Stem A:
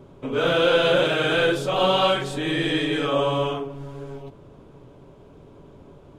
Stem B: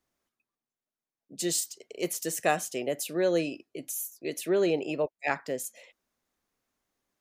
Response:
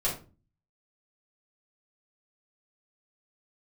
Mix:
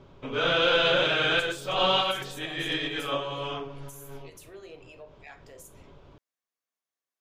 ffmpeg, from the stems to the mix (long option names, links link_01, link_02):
-filter_complex "[0:a]lowpass=frequency=5900:width=0.5412,lowpass=frequency=5900:width=1.3066,equalizer=frequency=270:width=0.33:gain=-9.5,acontrast=58,volume=-4.5dB[link_01];[1:a]asoftclip=type=tanh:threshold=-15dB,highpass=frequency=1000:poles=1,acompressor=threshold=-37dB:ratio=2,volume=-13dB,asplit=3[link_02][link_03][link_04];[link_03]volume=-9.5dB[link_05];[link_04]apad=whole_len=272540[link_06];[link_01][link_06]sidechaincompress=threshold=-55dB:ratio=8:attack=27:release=155[link_07];[2:a]atrim=start_sample=2205[link_08];[link_05][link_08]afir=irnorm=-1:irlink=0[link_09];[link_07][link_02][link_09]amix=inputs=3:normalize=0"